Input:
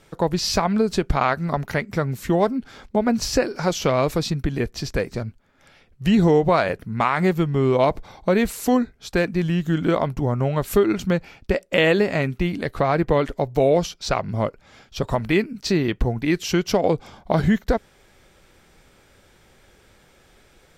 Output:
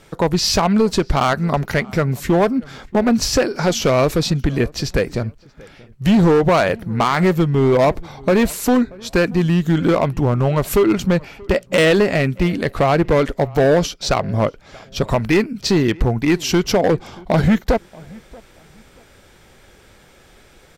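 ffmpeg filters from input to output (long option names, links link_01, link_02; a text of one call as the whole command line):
ffmpeg -i in.wav -filter_complex "[0:a]asoftclip=type=hard:threshold=-15.5dB,asplit=2[link_01][link_02];[link_02]adelay=632,lowpass=frequency=2100:poles=1,volume=-23.5dB,asplit=2[link_03][link_04];[link_04]adelay=632,lowpass=frequency=2100:poles=1,volume=0.27[link_05];[link_03][link_05]amix=inputs=2:normalize=0[link_06];[link_01][link_06]amix=inputs=2:normalize=0,volume=6dB" out.wav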